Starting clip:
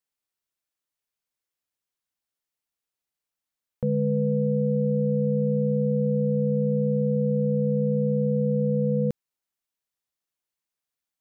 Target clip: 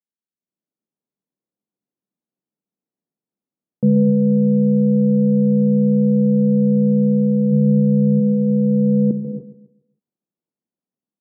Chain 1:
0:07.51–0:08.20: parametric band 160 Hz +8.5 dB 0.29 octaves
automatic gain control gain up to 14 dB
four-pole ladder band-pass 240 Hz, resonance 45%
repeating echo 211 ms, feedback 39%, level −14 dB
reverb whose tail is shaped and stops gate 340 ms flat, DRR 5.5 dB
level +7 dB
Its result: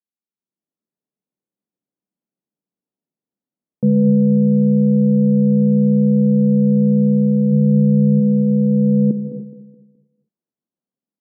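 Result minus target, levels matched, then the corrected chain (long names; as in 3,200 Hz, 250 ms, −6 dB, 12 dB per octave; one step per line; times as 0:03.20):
echo 73 ms late
0:07.51–0:08.20: parametric band 160 Hz +8.5 dB 0.29 octaves
automatic gain control gain up to 14 dB
four-pole ladder band-pass 240 Hz, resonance 45%
repeating echo 138 ms, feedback 39%, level −14 dB
reverb whose tail is shaped and stops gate 340 ms flat, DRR 5.5 dB
level +7 dB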